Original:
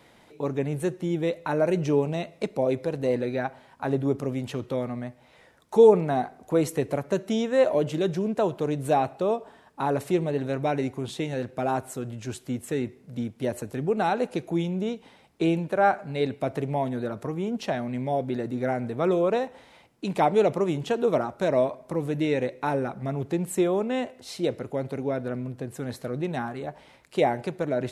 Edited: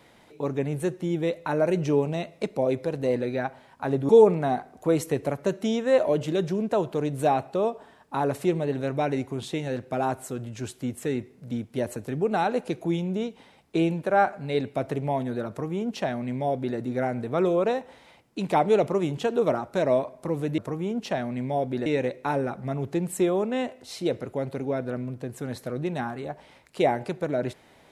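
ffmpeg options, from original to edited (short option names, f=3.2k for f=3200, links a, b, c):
-filter_complex "[0:a]asplit=4[a][b][c][d];[a]atrim=end=4.092[e];[b]atrim=start=5.748:end=22.242[f];[c]atrim=start=17.148:end=18.432[g];[d]atrim=start=22.238[h];[e][f]acrossfade=d=0.004:c1=hsin:c2=hsin[i];[i][g]acrossfade=d=0.004:c1=hsin:c2=hsin[j];[j][h]acrossfade=d=0.004:c1=hsin:c2=hsin"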